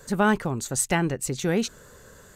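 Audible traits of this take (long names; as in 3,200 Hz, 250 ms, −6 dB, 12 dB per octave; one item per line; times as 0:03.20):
background noise floor −50 dBFS
spectral slope −4.5 dB per octave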